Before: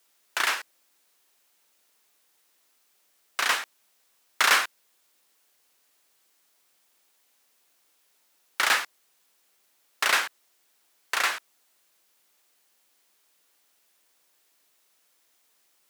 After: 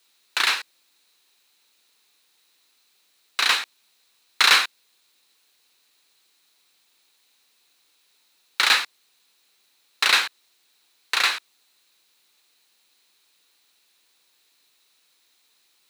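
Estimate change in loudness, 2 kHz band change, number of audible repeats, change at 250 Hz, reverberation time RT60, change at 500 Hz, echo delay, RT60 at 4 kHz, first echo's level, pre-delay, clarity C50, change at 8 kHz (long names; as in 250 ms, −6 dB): +5.0 dB, +3.5 dB, no echo audible, +1.5 dB, no reverb audible, −1.0 dB, no echo audible, no reverb audible, no echo audible, no reverb audible, no reverb audible, +2.0 dB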